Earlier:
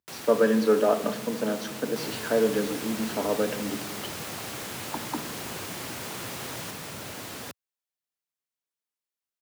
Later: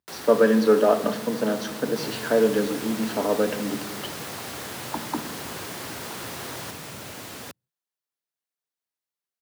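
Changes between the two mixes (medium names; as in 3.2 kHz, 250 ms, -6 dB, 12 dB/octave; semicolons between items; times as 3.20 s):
speech +3.5 dB; first sound: send on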